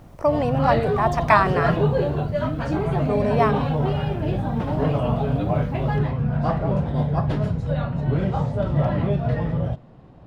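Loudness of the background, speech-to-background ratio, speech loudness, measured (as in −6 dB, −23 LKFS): −23.5 LKFS, 1.0 dB, −22.5 LKFS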